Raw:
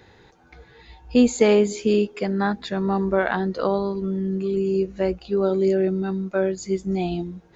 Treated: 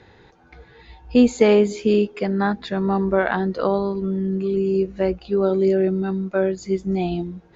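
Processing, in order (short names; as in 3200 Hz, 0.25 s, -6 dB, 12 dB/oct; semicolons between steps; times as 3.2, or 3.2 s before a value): air absorption 85 m; gain +2 dB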